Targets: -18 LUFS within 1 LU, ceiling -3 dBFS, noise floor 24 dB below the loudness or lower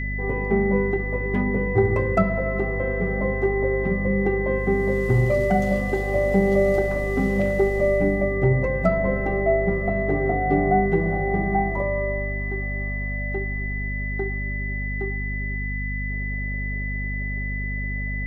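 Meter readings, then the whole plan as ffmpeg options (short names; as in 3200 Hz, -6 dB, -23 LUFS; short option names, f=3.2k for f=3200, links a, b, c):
hum 50 Hz; harmonics up to 250 Hz; hum level -26 dBFS; steady tone 2000 Hz; tone level -30 dBFS; loudness -23.5 LUFS; peak -7.0 dBFS; loudness target -18.0 LUFS
-> -af "bandreject=f=50:t=h:w=6,bandreject=f=100:t=h:w=6,bandreject=f=150:t=h:w=6,bandreject=f=200:t=h:w=6,bandreject=f=250:t=h:w=6"
-af "bandreject=f=2k:w=30"
-af "volume=5.5dB,alimiter=limit=-3dB:level=0:latency=1"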